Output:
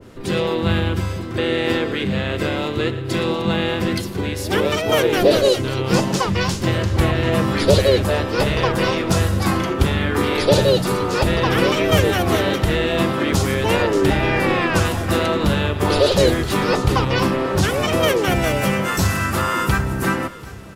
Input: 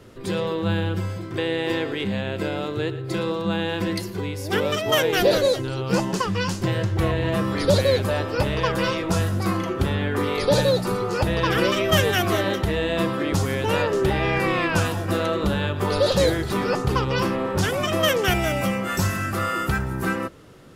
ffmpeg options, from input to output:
-filter_complex "[0:a]acrossover=split=1100[a][b];[b]alimiter=limit=-21dB:level=0:latency=1:release=297[c];[a][c]amix=inputs=2:normalize=0,asplit=3[d][e][f];[e]asetrate=33038,aresample=44100,atempo=1.33484,volume=-5dB[g];[f]asetrate=52444,aresample=44100,atempo=0.840896,volume=-17dB[h];[d][g][h]amix=inputs=3:normalize=0,aecho=1:1:739|1478|2217|2956|3695:0.112|0.0617|0.0339|0.0187|0.0103,adynamicequalizer=threshold=0.0158:dfrequency=1600:dqfactor=0.7:tfrequency=1600:tqfactor=0.7:attack=5:release=100:ratio=0.375:range=2:mode=boostabove:tftype=highshelf,volume=3dB"

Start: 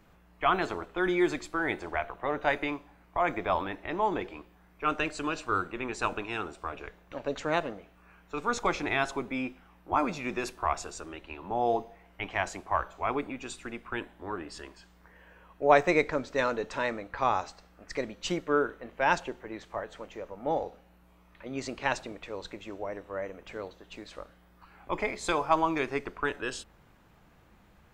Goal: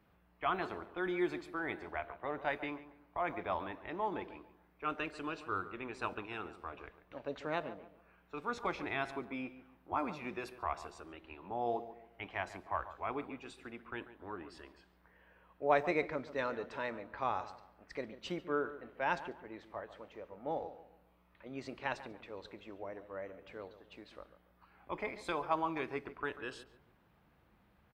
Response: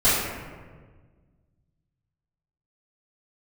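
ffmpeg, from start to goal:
-filter_complex "[0:a]highpass=46,equalizer=f=7k:t=o:w=0.7:g=-12,asplit=2[a][b];[b]adelay=141,lowpass=f=1.7k:p=1,volume=-13dB,asplit=2[c][d];[d]adelay=141,lowpass=f=1.7k:p=1,volume=0.36,asplit=2[e][f];[f]adelay=141,lowpass=f=1.7k:p=1,volume=0.36,asplit=2[g][h];[h]adelay=141,lowpass=f=1.7k:p=1,volume=0.36[i];[c][e][g][i]amix=inputs=4:normalize=0[j];[a][j]amix=inputs=2:normalize=0,volume=-8.5dB"

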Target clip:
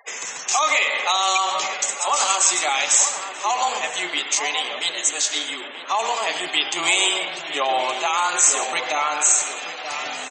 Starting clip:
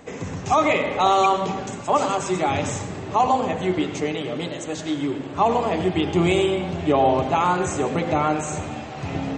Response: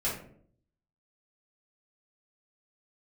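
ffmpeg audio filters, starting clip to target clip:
-filter_complex "[0:a]highpass=880,afftfilt=real='re*gte(hypot(re,im),0.00501)':imag='im*gte(hypot(re,im),0.00501)':win_size=1024:overlap=0.75,alimiter=limit=-16.5dB:level=0:latency=1:release=113,afreqshift=-13,atempo=0.91,crystalizer=i=7:c=0,asplit=2[a][b];[b]adelay=932.9,volume=-8dB,highshelf=f=4k:g=-21[c];[a][c]amix=inputs=2:normalize=0,volume=1dB"

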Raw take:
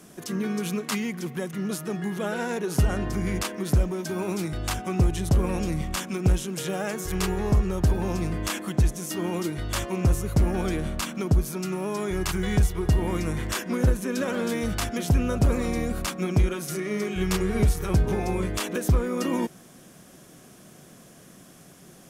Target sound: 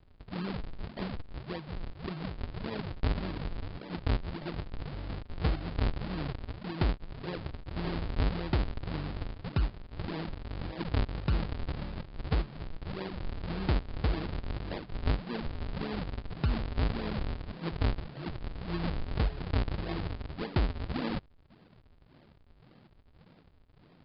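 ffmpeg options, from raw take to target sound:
-af "aresample=11025,acrusher=samples=35:mix=1:aa=0.000001:lfo=1:lforange=56:lforate=1.9,aresample=44100,asetrate=40517,aresample=44100,volume=-8dB"

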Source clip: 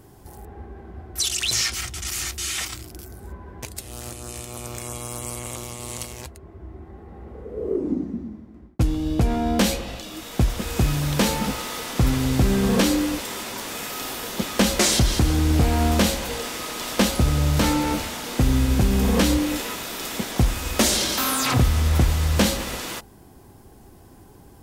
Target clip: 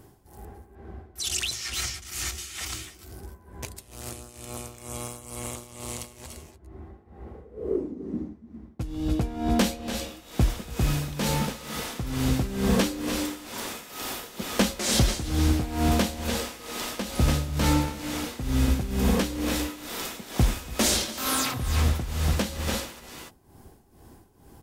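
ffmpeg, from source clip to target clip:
-af "aecho=1:1:287|300:0.282|0.266,tremolo=f=2.2:d=0.77,volume=-2dB"

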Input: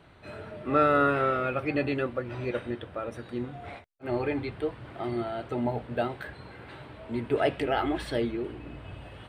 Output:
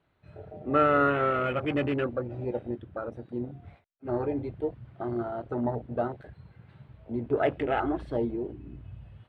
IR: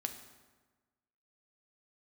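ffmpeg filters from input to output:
-filter_complex "[0:a]asettb=1/sr,asplit=3[a][b][c];[a]atrim=end=1.344[d];[b]atrim=start=1.34:end=2.28,asetpts=PTS-STARTPTS,afade=t=in:d=0.004:c=qsin,afade=t=out:st=0.936:d=0.004:c=qsin,aeval=exprs='0.178*(cos(1*acos(clip(val(0)/0.178,-1,1)))-cos(1*PI/2))+0.02*(cos(3*acos(clip(val(0)/0.178,-1,1)))-cos(3*PI/2))+0.0251*(cos(5*acos(clip(val(0)/0.178,-1,1)))-cos(5*PI/2))':c=same[e];[c]atrim=start=2.276[f];[d][e]acrossfade=d=0.004:c1=hsin:c2=qsin[g];[g][f]acrossfade=d=0.004:c1=qsin:c2=hsin,adynamicsmooth=sensitivity=7.5:basefreq=7.9k,afwtdn=0.0224"

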